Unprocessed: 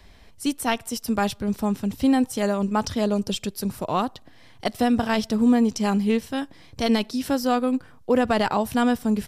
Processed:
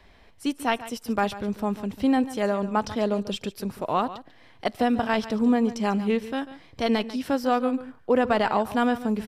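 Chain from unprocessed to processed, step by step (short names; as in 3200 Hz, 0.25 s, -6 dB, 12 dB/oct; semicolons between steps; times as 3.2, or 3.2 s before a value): tone controls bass -6 dB, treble -10 dB; on a send: echo 0.143 s -15 dB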